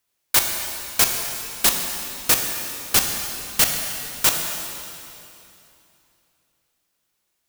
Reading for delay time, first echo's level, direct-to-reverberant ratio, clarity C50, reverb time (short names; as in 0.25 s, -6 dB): none, none, 2.5 dB, 4.0 dB, 2.9 s